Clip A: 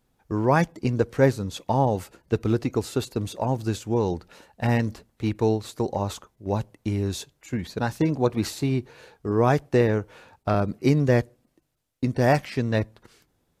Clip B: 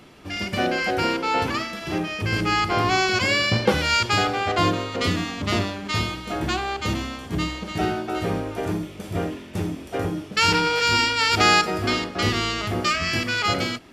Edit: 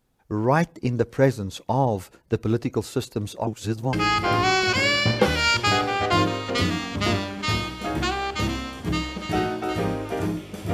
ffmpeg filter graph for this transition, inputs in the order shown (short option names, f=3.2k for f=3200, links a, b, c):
-filter_complex "[0:a]apad=whole_dur=10.73,atrim=end=10.73,asplit=2[a][b];[a]atrim=end=3.472[c];[b]atrim=start=3.468:end=3.932,asetpts=PTS-STARTPTS,areverse[d];[1:a]atrim=start=2.388:end=9.19[e];[c][d]acrossfade=d=0.004:c1=hsin:c2=hsin[f];[f][e]acrossfade=d=0.004:c1=hsin:c2=hsin"